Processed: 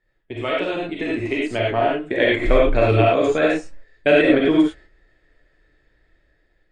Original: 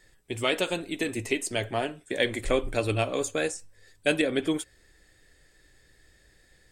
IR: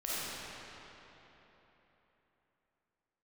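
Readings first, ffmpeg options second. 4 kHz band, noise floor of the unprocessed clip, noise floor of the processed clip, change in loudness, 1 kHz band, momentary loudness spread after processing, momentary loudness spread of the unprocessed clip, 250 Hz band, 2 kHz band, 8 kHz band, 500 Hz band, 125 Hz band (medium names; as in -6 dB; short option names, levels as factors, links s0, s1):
+2.5 dB, -62 dBFS, -65 dBFS, +9.5 dB, +11.0 dB, 10 LU, 7 LU, +11.0 dB, +8.0 dB, under -10 dB, +10.5 dB, +10.0 dB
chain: -filter_complex "[0:a]agate=range=0.224:threshold=0.00316:ratio=16:detection=peak,dynaudnorm=f=660:g=5:m=3.76,lowpass=2300[s0];[1:a]atrim=start_sample=2205,afade=t=out:st=0.16:d=0.01,atrim=end_sample=7497[s1];[s0][s1]afir=irnorm=-1:irlink=0,asplit=2[s2][s3];[s3]acompressor=threshold=0.0447:ratio=6,volume=0.794[s4];[s2][s4]amix=inputs=2:normalize=0"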